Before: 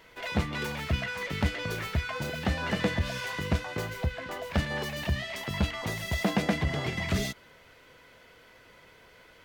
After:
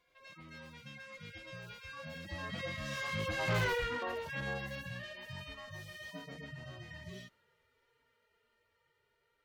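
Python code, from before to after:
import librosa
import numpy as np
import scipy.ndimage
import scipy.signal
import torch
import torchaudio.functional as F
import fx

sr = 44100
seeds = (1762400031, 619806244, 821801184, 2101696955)

y = fx.hpss_only(x, sr, part='harmonic')
y = fx.doppler_pass(y, sr, speed_mps=26, closest_m=3.5, pass_at_s=3.64)
y = 10.0 ** (-39.0 / 20.0) * np.tanh(y / 10.0 ** (-39.0 / 20.0))
y = y * 10.0 ** (11.5 / 20.0)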